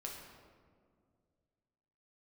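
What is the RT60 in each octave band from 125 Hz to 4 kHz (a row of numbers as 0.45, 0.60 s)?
2.8, 2.5, 2.3, 1.8, 1.3, 0.95 s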